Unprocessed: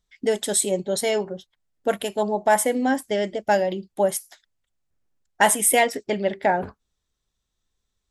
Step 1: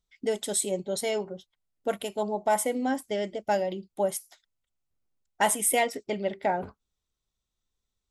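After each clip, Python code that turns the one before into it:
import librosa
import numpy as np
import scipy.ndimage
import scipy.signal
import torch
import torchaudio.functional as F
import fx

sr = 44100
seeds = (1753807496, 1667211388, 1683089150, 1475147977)

y = fx.notch(x, sr, hz=1700.0, q=7.6)
y = y * 10.0 ** (-6.0 / 20.0)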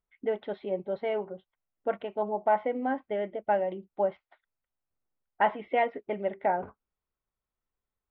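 y = scipy.ndimage.gaussian_filter1d(x, 4.3, mode='constant')
y = fx.low_shelf(y, sr, hz=390.0, db=-10.5)
y = y * 10.0 ** (3.5 / 20.0)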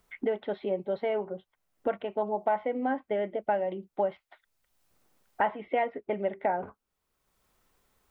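y = fx.band_squash(x, sr, depth_pct=70)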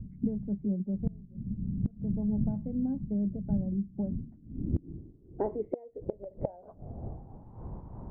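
y = fx.dmg_wind(x, sr, seeds[0], corner_hz=140.0, level_db=-36.0)
y = fx.filter_sweep_lowpass(y, sr, from_hz=200.0, to_hz=930.0, start_s=3.82, end_s=7.57, q=5.0)
y = fx.gate_flip(y, sr, shuts_db=-16.0, range_db=-25)
y = y * 10.0 ** (-1.5 / 20.0)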